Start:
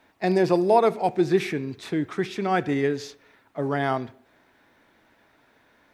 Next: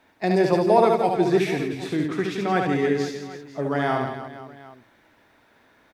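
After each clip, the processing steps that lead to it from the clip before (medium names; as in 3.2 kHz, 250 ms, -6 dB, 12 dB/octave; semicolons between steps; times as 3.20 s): reverse bouncing-ball echo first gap 70 ms, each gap 1.4×, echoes 5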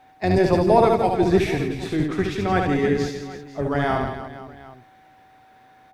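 octave divider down 1 oct, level -3 dB; whistle 760 Hz -52 dBFS; trim +1 dB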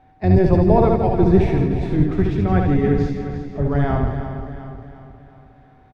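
RIAA curve playback; on a send: feedback delay 357 ms, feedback 50%, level -11 dB; on the sum: trim -3 dB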